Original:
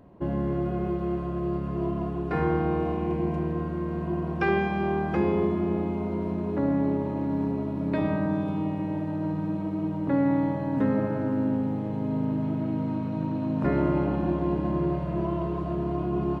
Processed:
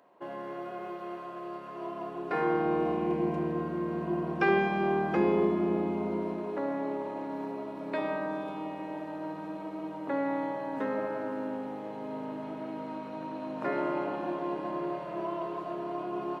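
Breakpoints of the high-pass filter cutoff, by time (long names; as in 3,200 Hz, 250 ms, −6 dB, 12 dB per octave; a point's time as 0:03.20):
0:01.79 680 Hz
0:02.91 220 Hz
0:06.12 220 Hz
0:06.61 490 Hz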